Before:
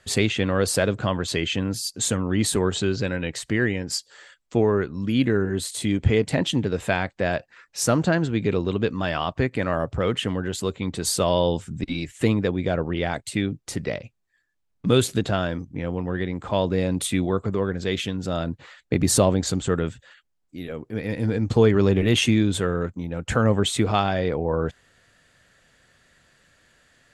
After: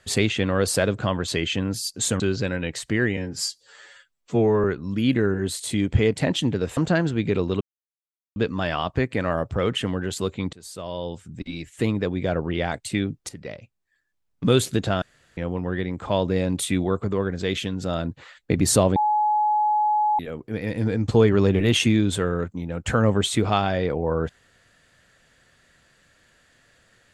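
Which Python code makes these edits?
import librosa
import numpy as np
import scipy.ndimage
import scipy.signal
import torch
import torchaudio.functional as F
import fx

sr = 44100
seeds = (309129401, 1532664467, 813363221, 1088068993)

y = fx.edit(x, sr, fx.cut(start_s=2.2, length_s=0.6),
    fx.stretch_span(start_s=3.77, length_s=0.98, factor=1.5),
    fx.cut(start_s=6.88, length_s=1.06),
    fx.insert_silence(at_s=8.78, length_s=0.75),
    fx.fade_in_from(start_s=10.95, length_s=1.88, floor_db=-21.5),
    fx.fade_in_from(start_s=13.71, length_s=1.17, curve='qsin', floor_db=-14.0),
    fx.room_tone_fill(start_s=15.44, length_s=0.35),
    fx.bleep(start_s=19.38, length_s=1.23, hz=846.0, db=-17.5), tone=tone)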